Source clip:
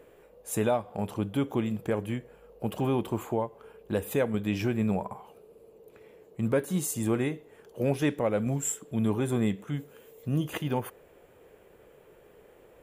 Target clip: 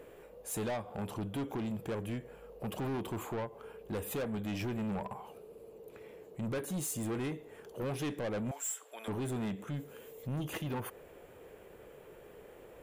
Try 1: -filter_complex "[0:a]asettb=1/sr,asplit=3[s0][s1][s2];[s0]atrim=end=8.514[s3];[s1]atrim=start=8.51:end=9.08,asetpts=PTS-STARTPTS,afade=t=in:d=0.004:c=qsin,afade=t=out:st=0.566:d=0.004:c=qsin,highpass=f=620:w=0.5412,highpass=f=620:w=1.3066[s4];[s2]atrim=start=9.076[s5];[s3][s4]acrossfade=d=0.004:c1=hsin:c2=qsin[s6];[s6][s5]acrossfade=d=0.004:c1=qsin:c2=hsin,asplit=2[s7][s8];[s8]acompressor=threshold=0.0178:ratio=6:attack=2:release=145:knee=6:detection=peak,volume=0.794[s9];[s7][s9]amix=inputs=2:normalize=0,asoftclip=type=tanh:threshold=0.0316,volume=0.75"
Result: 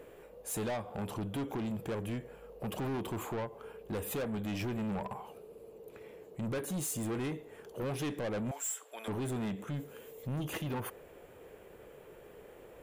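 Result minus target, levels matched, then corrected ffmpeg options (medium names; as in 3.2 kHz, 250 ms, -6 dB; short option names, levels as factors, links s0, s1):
compression: peak gain reduction -9.5 dB
-filter_complex "[0:a]asettb=1/sr,asplit=3[s0][s1][s2];[s0]atrim=end=8.514[s3];[s1]atrim=start=8.51:end=9.08,asetpts=PTS-STARTPTS,afade=t=in:d=0.004:c=qsin,afade=t=out:st=0.566:d=0.004:c=qsin,highpass=f=620:w=0.5412,highpass=f=620:w=1.3066[s4];[s2]atrim=start=9.076[s5];[s3][s4]acrossfade=d=0.004:c1=hsin:c2=qsin[s6];[s6][s5]acrossfade=d=0.004:c1=qsin:c2=hsin,asplit=2[s7][s8];[s8]acompressor=threshold=0.00473:ratio=6:attack=2:release=145:knee=6:detection=peak,volume=0.794[s9];[s7][s9]amix=inputs=2:normalize=0,asoftclip=type=tanh:threshold=0.0316,volume=0.75"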